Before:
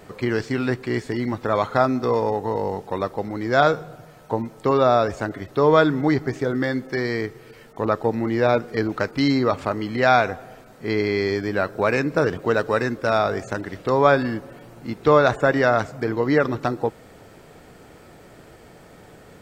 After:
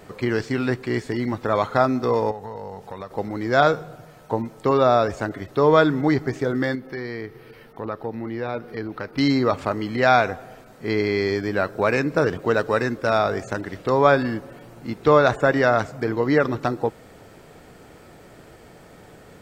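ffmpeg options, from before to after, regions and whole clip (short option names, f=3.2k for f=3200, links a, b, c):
-filter_complex "[0:a]asettb=1/sr,asplit=3[a][b][c];[a]atrim=end=2.314[d];[b]atrim=start=2.31:end=3.11,asetpts=PTS-STARTPTS,afade=t=in:d=0.004:c=qsin,afade=t=out:st=0.796:d=0.004:c=qsin,equalizer=f=320:w=3.4:g=-12.5,acompressor=threshold=-32dB:ratio=3:attack=3.2:release=140:knee=1:detection=peak[e];[c]atrim=start=3.106[f];[d][e]acrossfade=d=0.004:c1=hsin:c2=qsin[g];[g][f]acrossfade=d=0.004:c1=qsin:c2=hsin,asettb=1/sr,asplit=3[h][i][j];[h]atrim=end=6.754[k];[i]atrim=start=6.75:end=9.18,asetpts=PTS-STARTPTS,afade=t=in:d=0.004:c=qsin,afade=t=out:st=2.426:d=0.004:c=qsin,equalizer=f=7.3k:w=2:g=-14,bandreject=f=620:w=20,acompressor=threshold=-38dB:ratio=1.5:attack=3.2:release=140:knee=1:detection=peak[l];[j]atrim=start=9.176[m];[k][l]acrossfade=d=0.004:c1=hsin:c2=qsin[n];[n][m]acrossfade=d=0.004:c1=qsin:c2=hsin"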